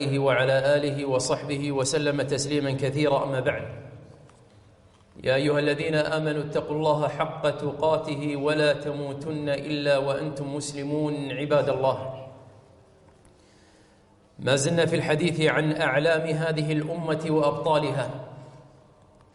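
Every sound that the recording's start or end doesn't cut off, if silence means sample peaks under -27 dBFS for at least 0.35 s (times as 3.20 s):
5.24–12.10 s
14.42–18.20 s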